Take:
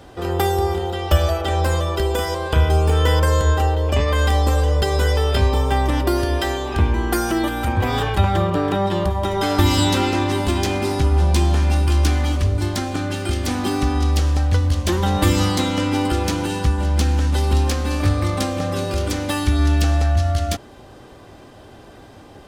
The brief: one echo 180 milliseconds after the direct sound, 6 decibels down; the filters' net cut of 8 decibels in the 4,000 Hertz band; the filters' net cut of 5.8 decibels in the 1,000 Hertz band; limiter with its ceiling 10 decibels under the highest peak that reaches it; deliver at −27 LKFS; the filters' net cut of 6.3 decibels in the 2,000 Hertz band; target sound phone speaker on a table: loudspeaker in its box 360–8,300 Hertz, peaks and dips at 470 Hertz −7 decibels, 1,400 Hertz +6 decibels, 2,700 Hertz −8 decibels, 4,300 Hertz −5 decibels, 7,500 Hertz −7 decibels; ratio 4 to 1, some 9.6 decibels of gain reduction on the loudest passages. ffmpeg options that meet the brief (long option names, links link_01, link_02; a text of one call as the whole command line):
ffmpeg -i in.wav -af "equalizer=frequency=1000:width_type=o:gain=-7,equalizer=frequency=2000:width_type=o:gain=-7,equalizer=frequency=4000:width_type=o:gain=-3,acompressor=threshold=-23dB:ratio=4,alimiter=limit=-21.5dB:level=0:latency=1,highpass=frequency=360:width=0.5412,highpass=frequency=360:width=1.3066,equalizer=frequency=470:width_type=q:width=4:gain=-7,equalizer=frequency=1400:width_type=q:width=4:gain=6,equalizer=frequency=2700:width_type=q:width=4:gain=-8,equalizer=frequency=4300:width_type=q:width=4:gain=-5,equalizer=frequency=7500:width_type=q:width=4:gain=-7,lowpass=frequency=8300:width=0.5412,lowpass=frequency=8300:width=1.3066,aecho=1:1:180:0.501,volume=10dB" out.wav